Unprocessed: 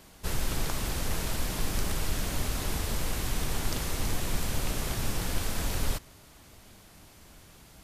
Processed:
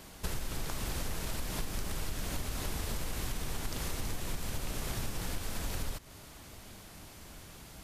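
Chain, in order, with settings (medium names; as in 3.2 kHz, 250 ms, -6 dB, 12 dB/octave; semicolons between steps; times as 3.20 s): compression 10:1, threshold -34 dBFS, peak gain reduction 13 dB; trim +3 dB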